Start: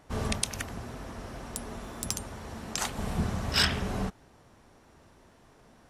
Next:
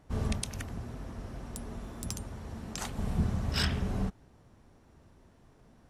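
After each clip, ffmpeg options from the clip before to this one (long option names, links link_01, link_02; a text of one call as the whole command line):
ffmpeg -i in.wav -af "lowshelf=frequency=320:gain=10,volume=-7.5dB" out.wav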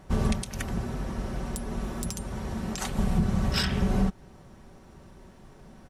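ffmpeg -i in.wav -af "aecho=1:1:5.3:0.41,alimiter=limit=-24dB:level=0:latency=1:release=261,volume=9dB" out.wav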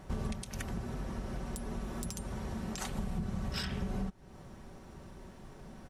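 ffmpeg -i in.wav -af "acompressor=threshold=-38dB:ratio=2.5" out.wav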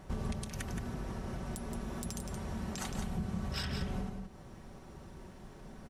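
ffmpeg -i in.wav -af "aecho=1:1:172:0.473,volume=-1dB" out.wav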